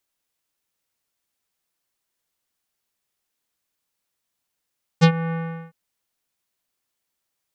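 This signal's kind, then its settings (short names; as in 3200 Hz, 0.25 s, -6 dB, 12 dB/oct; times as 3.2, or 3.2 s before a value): synth note square E3 24 dB/oct, low-pass 2000 Hz, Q 1.2, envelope 2 oct, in 0.10 s, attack 26 ms, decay 0.08 s, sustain -15.5 dB, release 0.40 s, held 0.31 s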